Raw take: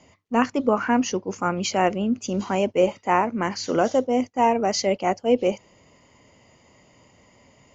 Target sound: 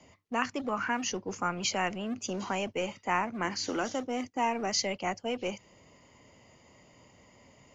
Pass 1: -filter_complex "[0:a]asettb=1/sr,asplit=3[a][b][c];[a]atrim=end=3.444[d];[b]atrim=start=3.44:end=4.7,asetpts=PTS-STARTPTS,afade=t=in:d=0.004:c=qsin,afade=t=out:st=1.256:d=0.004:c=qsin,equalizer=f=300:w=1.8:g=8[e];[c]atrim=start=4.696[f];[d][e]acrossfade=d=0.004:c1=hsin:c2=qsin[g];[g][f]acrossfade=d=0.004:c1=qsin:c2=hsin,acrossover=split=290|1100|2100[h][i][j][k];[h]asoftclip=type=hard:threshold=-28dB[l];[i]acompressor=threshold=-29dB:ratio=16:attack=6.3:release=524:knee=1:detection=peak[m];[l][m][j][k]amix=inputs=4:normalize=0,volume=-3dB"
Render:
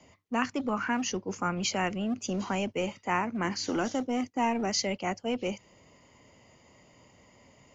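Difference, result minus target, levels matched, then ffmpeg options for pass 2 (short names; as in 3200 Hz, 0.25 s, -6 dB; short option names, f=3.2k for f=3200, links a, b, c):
hard clip: distortion -4 dB
-filter_complex "[0:a]asettb=1/sr,asplit=3[a][b][c];[a]atrim=end=3.444[d];[b]atrim=start=3.44:end=4.7,asetpts=PTS-STARTPTS,afade=t=in:d=0.004:c=qsin,afade=t=out:st=1.256:d=0.004:c=qsin,equalizer=f=300:w=1.8:g=8[e];[c]atrim=start=4.696[f];[d][e]acrossfade=d=0.004:c1=hsin:c2=qsin[g];[g][f]acrossfade=d=0.004:c1=qsin:c2=hsin,acrossover=split=290|1100|2100[h][i][j][k];[h]asoftclip=type=hard:threshold=-36dB[l];[i]acompressor=threshold=-29dB:ratio=16:attack=6.3:release=524:knee=1:detection=peak[m];[l][m][j][k]amix=inputs=4:normalize=0,volume=-3dB"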